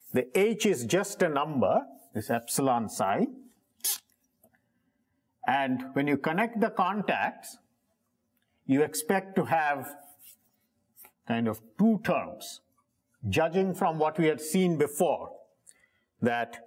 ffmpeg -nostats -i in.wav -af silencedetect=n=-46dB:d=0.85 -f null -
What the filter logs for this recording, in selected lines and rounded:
silence_start: 4.44
silence_end: 5.43 | silence_duration: 0.99
silence_start: 7.55
silence_end: 8.69 | silence_duration: 1.13